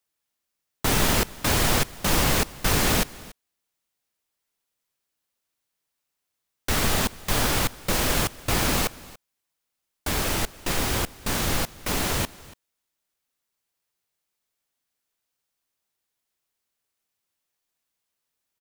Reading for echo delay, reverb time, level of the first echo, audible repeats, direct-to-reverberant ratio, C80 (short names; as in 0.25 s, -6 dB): 0.285 s, none, -21.0 dB, 1, none, none